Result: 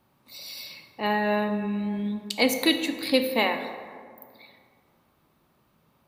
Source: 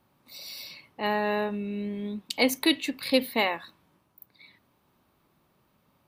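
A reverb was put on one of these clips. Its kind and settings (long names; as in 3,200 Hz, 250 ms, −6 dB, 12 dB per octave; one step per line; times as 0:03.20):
dense smooth reverb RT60 2.1 s, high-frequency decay 0.45×, DRR 6.5 dB
level +1 dB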